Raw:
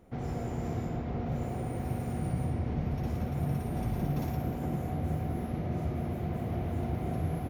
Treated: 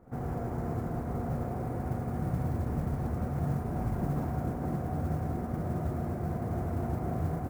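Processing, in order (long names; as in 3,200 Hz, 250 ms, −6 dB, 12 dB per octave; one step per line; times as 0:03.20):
noise that follows the level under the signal 15 dB
high shelf with overshoot 2,100 Hz −14 dB, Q 1.5
on a send: backwards echo 58 ms −20 dB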